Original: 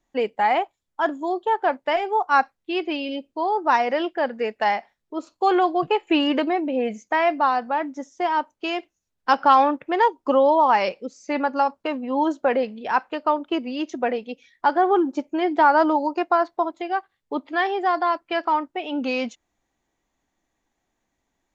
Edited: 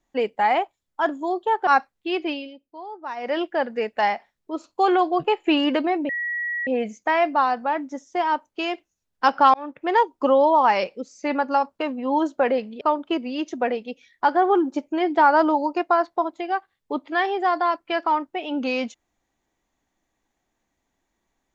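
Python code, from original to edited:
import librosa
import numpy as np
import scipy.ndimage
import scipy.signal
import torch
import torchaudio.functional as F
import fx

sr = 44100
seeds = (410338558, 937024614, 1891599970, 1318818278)

y = fx.edit(x, sr, fx.cut(start_s=1.67, length_s=0.63),
    fx.fade_down_up(start_s=2.93, length_s=1.07, db=-14.0, fade_s=0.21),
    fx.insert_tone(at_s=6.72, length_s=0.58, hz=1920.0, db=-24.0),
    fx.fade_in_span(start_s=9.59, length_s=0.38),
    fx.cut(start_s=12.86, length_s=0.36), tone=tone)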